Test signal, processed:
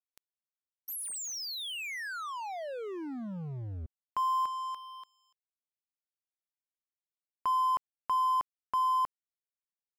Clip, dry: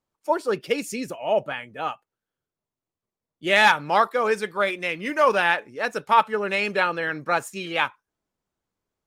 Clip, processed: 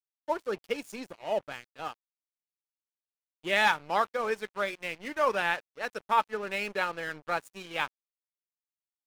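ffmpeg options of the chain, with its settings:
-af "aeval=exprs='sgn(val(0))*max(abs(val(0))-0.0158,0)':c=same,volume=0.447"

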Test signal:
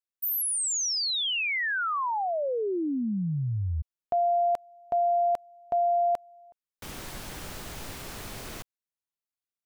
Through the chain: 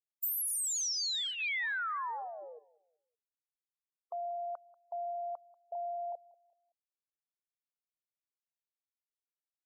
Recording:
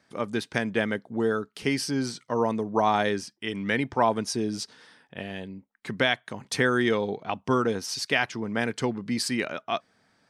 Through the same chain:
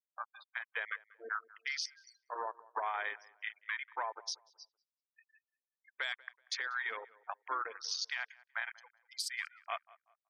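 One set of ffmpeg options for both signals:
-filter_complex "[0:a]highpass=1500,afwtdn=0.0158,afftfilt=real='re*gte(hypot(re,im),0.00631)':imag='im*gte(hypot(re,im),0.00631)':win_size=1024:overlap=0.75,equalizer=f=2800:t=o:w=0.26:g=-12,acompressor=threshold=0.02:ratio=4:attack=57:release=500:knee=1:detection=peak,alimiter=level_in=1.12:limit=0.0631:level=0:latency=1:release=157,volume=0.891,acontrast=21,asplit=2[s0][s1];[s1]adelay=189,lowpass=f=1900:p=1,volume=0.0944,asplit=2[s2][s3];[s3]adelay=189,lowpass=f=1900:p=1,volume=0.33,asplit=2[s4][s5];[s5]adelay=189,lowpass=f=1900:p=1,volume=0.33[s6];[s2][s4][s6]amix=inputs=3:normalize=0[s7];[s0][s7]amix=inputs=2:normalize=0,aresample=32000,aresample=44100,volume=0.596"

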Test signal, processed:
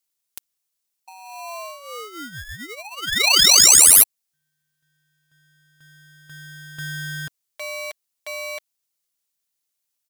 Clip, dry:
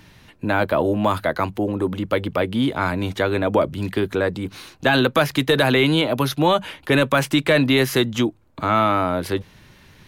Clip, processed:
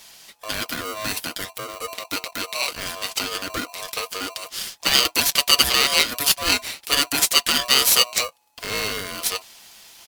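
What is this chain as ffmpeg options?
-af "aecho=1:1:5.4:0.53,aexciter=amount=15.1:drive=3.1:freq=2800,aeval=exprs='val(0)*sgn(sin(2*PI*850*n/s))':c=same,volume=0.251"

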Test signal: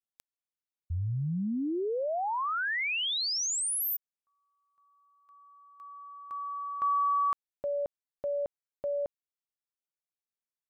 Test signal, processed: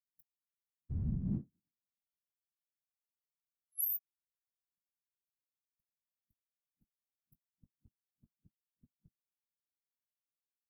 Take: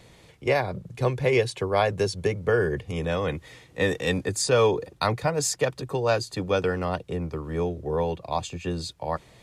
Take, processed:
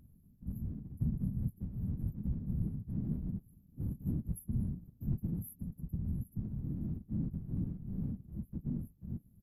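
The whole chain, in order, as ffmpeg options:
-filter_complex "[0:a]asplit=2[s0][s1];[s1]adelay=18,volume=0.251[s2];[s0][s2]amix=inputs=2:normalize=0,afftfilt=real='re*(1-between(b*sr/4096,190,11000))':imag='im*(1-between(b*sr/4096,190,11000))':win_size=4096:overlap=0.75,afftfilt=real='hypot(re,im)*cos(2*PI*random(0))':imag='hypot(re,im)*sin(2*PI*random(1))':win_size=512:overlap=0.75,volume=1.19"

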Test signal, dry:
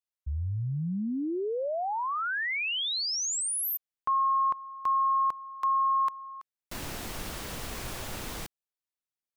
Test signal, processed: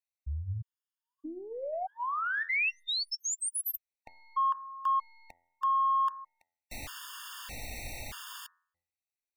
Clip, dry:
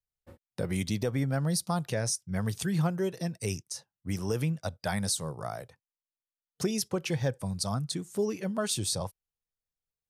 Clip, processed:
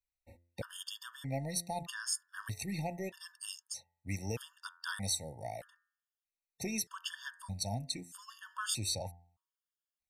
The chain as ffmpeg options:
-af "bandreject=f=920:w=27,bandreject=f=86.13:t=h:w=4,bandreject=f=172.26:t=h:w=4,bandreject=f=258.39:t=h:w=4,bandreject=f=344.52:t=h:w=4,bandreject=f=430.65:t=h:w=4,bandreject=f=516.78:t=h:w=4,bandreject=f=602.91:t=h:w=4,bandreject=f=689.04:t=h:w=4,bandreject=f=775.17:t=h:w=4,bandreject=f=861.3:t=h:w=4,bandreject=f=947.43:t=h:w=4,bandreject=f=1033.56:t=h:w=4,bandreject=f=1119.69:t=h:w=4,bandreject=f=1205.82:t=h:w=4,bandreject=f=1291.95:t=h:w=4,bandreject=f=1378.08:t=h:w=4,bandreject=f=1464.21:t=h:w=4,bandreject=f=1550.34:t=h:w=4,bandreject=f=1636.47:t=h:w=4,bandreject=f=1722.6:t=h:w=4,bandreject=f=1808.73:t=h:w=4,bandreject=f=1894.86:t=h:w=4,bandreject=f=1980.99:t=h:w=4,bandreject=f=2067.12:t=h:w=4,aeval=exprs='0.15*(cos(1*acos(clip(val(0)/0.15,-1,1)))-cos(1*PI/2))+0.00119*(cos(2*acos(clip(val(0)/0.15,-1,1)))-cos(2*PI/2))+0.00596*(cos(3*acos(clip(val(0)/0.15,-1,1)))-cos(3*PI/2))+0.00106*(cos(4*acos(clip(val(0)/0.15,-1,1)))-cos(4*PI/2))+0.00133*(cos(6*acos(clip(val(0)/0.15,-1,1)))-cos(6*PI/2))':c=same,equalizer=f=160:t=o:w=0.67:g=-11,equalizer=f=400:t=o:w=0.67:g=-11,equalizer=f=2500:t=o:w=0.67:g=4,afftfilt=real='re*gt(sin(2*PI*0.8*pts/sr)*(1-2*mod(floor(b*sr/1024/910),2)),0)':imag='im*gt(sin(2*PI*0.8*pts/sr)*(1-2*mod(floor(b*sr/1024/910),2)),0)':win_size=1024:overlap=0.75"

